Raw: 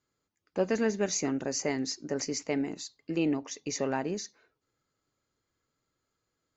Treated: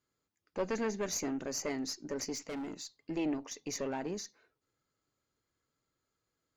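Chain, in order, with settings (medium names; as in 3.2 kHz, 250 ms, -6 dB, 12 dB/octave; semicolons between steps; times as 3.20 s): single-diode clipper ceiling -27 dBFS; 2.35–2.99 s: hard clipper -34 dBFS, distortion -17 dB; trim -3 dB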